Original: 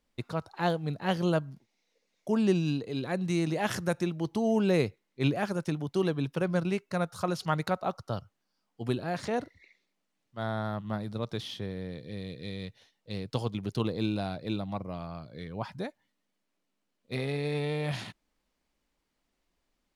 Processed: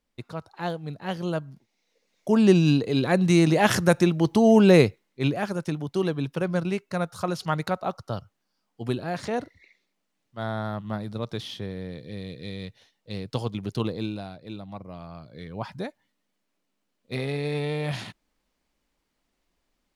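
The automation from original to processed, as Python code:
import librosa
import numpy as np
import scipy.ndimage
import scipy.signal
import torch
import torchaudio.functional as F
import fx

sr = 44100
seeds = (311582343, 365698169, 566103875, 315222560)

y = fx.gain(x, sr, db=fx.line((1.24, -2.0), (2.73, 10.0), (4.78, 10.0), (5.22, 2.5), (13.87, 2.5), (14.38, -6.5), (15.69, 3.0)))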